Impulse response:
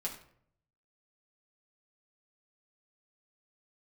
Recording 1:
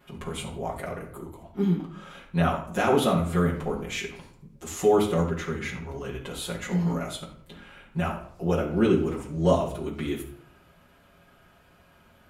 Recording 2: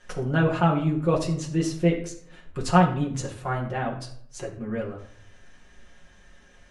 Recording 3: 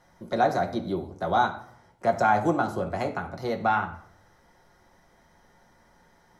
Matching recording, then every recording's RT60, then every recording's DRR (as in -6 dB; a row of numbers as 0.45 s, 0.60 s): 2; 0.65 s, 0.65 s, 0.65 s; -8.5 dB, -2.5 dB, 2.5 dB